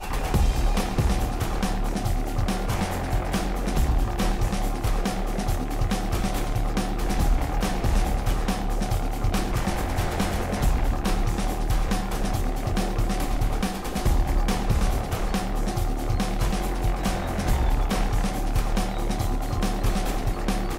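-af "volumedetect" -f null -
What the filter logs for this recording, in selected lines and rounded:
mean_volume: -23.5 dB
max_volume: -12.7 dB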